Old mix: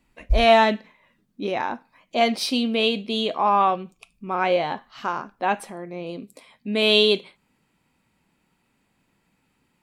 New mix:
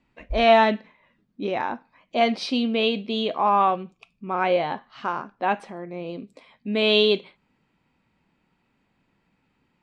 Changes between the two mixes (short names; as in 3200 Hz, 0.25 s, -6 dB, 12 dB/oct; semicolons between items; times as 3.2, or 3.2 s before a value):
background -10.5 dB; master: add air absorption 130 m